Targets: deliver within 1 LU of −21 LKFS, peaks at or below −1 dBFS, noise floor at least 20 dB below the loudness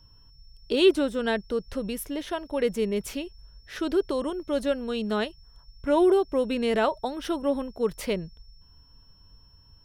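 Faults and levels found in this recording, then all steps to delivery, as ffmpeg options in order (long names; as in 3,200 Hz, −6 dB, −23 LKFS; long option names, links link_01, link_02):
interfering tone 5,400 Hz; level of the tone −58 dBFS; integrated loudness −27.0 LKFS; sample peak −9.0 dBFS; target loudness −21.0 LKFS
→ -af "bandreject=frequency=5400:width=30"
-af "volume=6dB"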